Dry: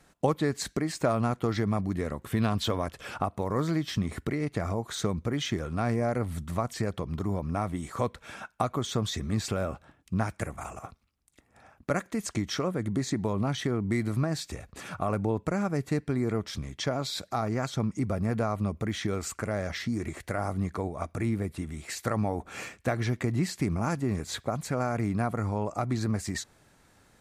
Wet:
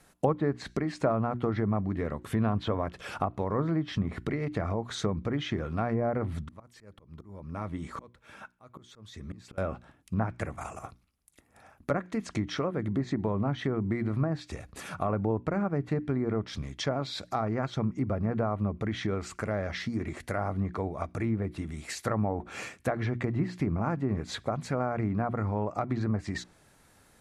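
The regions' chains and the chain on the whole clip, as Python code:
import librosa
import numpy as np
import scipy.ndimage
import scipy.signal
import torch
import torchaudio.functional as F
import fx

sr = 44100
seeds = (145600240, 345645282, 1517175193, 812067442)

y = fx.chain(x, sr, fx.lowpass(hz=3500.0, slope=6),
    fx.auto_swell(attack_ms=678.0),
    fx.notch(hz=720.0, q=7.7), at=(6.39, 9.58))
y = fx.hum_notches(y, sr, base_hz=60, count=6)
y = fx.env_lowpass_down(y, sr, base_hz=1400.0, full_db=-24.0)
y = fx.peak_eq(y, sr, hz=11000.0, db=9.5, octaves=0.34)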